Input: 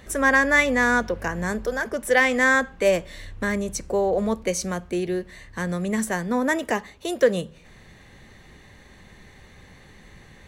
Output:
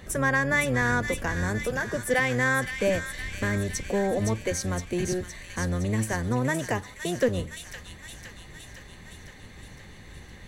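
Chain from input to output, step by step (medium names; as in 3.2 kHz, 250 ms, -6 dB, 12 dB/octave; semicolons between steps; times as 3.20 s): octave divider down 1 oct, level +2 dB; compression 1.5:1, threshold -31 dBFS, peak gain reduction 7.5 dB; on a send: feedback echo behind a high-pass 514 ms, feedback 67%, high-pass 2.3 kHz, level -4 dB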